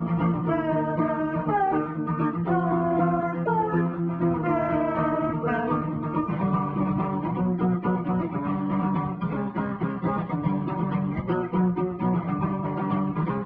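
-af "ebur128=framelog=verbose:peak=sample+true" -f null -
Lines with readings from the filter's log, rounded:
Integrated loudness:
  I:         -25.8 LUFS
  Threshold: -35.8 LUFS
Loudness range:
  LRA:         2.3 LU
  Threshold: -45.8 LUFS
  LRA low:   -27.0 LUFS
  LRA high:  -24.8 LUFS
Sample peak:
  Peak:      -11.5 dBFS
True peak:
  Peak:      -11.5 dBFS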